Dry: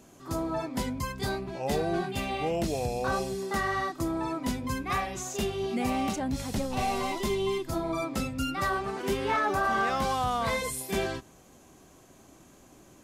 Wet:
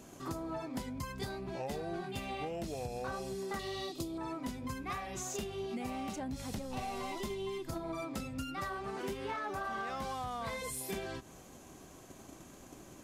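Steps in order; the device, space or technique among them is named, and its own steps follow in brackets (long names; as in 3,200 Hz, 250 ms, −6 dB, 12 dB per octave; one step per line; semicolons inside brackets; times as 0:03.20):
0:03.59–0:04.18: drawn EQ curve 280 Hz 0 dB, 420 Hz +5 dB, 1,600 Hz −15 dB, 2,600 Hz +7 dB, 3,900 Hz +12 dB, 6,000 Hz +5 dB
drum-bus smash (transient designer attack +7 dB, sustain +1 dB; downward compressor 6 to 1, threshold −37 dBFS, peak gain reduction 16 dB; soft clipping −30 dBFS, distortion −21 dB)
level +1 dB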